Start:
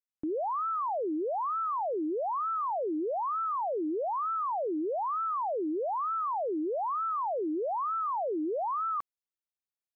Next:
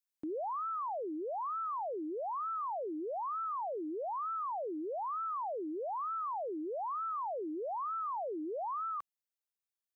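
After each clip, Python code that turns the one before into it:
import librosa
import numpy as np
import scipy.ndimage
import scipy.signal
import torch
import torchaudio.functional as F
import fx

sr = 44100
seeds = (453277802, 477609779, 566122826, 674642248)

y = fx.tilt_eq(x, sr, slope=2.0)
y = fx.rider(y, sr, range_db=4, speed_s=0.5)
y = F.gain(torch.from_numpy(y), -5.5).numpy()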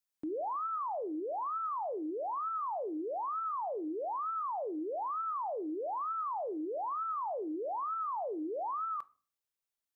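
y = fx.room_shoebox(x, sr, seeds[0], volume_m3=320.0, walls='furnished', distance_m=0.31)
y = F.gain(torch.from_numpy(y), 1.0).numpy()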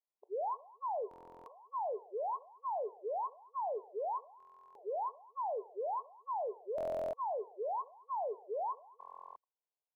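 y = fx.brickwall_bandpass(x, sr, low_hz=390.0, high_hz=1100.0)
y = fx.echo_feedback(y, sr, ms=217, feedback_pct=24, wet_db=-22.5)
y = fx.buffer_glitch(y, sr, at_s=(1.09, 4.38, 6.76, 8.99), block=1024, repeats=15)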